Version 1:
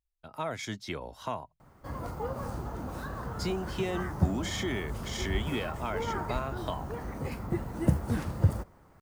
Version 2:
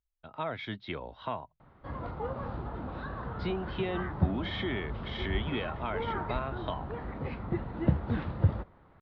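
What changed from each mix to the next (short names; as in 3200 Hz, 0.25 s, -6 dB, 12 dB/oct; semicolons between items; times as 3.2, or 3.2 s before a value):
master: add elliptic low-pass 3800 Hz, stop band 60 dB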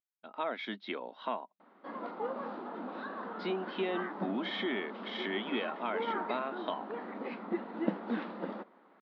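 master: add brick-wall FIR high-pass 190 Hz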